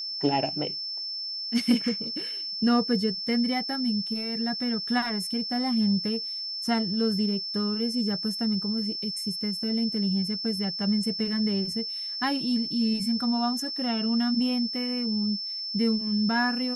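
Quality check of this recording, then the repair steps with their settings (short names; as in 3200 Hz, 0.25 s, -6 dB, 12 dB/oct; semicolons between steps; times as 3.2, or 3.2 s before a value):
tone 5300 Hz -31 dBFS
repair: notch 5300 Hz, Q 30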